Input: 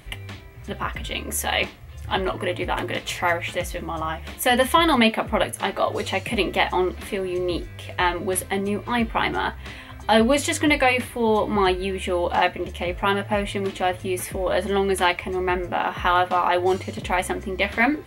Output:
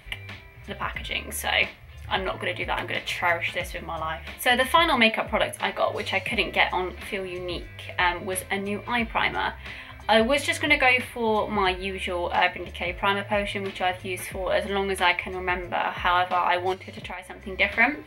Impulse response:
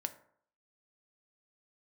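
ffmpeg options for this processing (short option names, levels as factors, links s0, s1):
-filter_complex "[0:a]asplit=2[s0][s1];[s1]highpass=f=340:w=0.5412,highpass=f=340:w=1.3066,equalizer=f=490:t=q:w=4:g=-6,equalizer=f=780:t=q:w=4:g=-5,equalizer=f=1200:t=q:w=4:g=-9,equalizer=f=2300:t=q:w=4:g=7,equalizer=f=5500:t=q:w=4:g=-3,lowpass=f=7200:w=0.5412,lowpass=f=7200:w=1.3066[s2];[1:a]atrim=start_sample=2205,afade=t=out:st=0.14:d=0.01,atrim=end_sample=6615[s3];[s2][s3]afir=irnorm=-1:irlink=0,volume=0.944[s4];[s0][s4]amix=inputs=2:normalize=0,asplit=3[s5][s6][s7];[s5]afade=t=out:st=16.73:d=0.02[s8];[s6]acompressor=threshold=0.0398:ratio=8,afade=t=in:st=16.73:d=0.02,afade=t=out:st=17.45:d=0.02[s9];[s7]afade=t=in:st=17.45:d=0.02[s10];[s8][s9][s10]amix=inputs=3:normalize=0,volume=0.562"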